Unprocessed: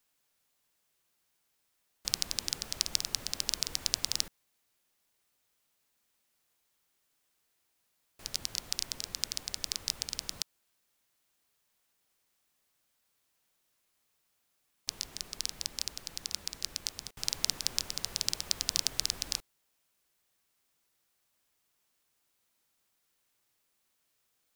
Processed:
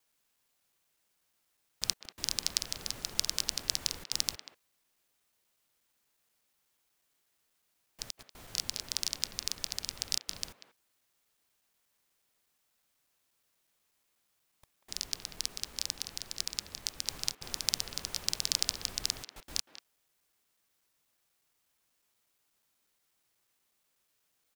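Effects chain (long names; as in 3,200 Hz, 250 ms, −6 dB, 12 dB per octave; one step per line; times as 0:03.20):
slices reordered back to front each 121 ms, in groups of 3
far-end echo of a speakerphone 190 ms, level −10 dB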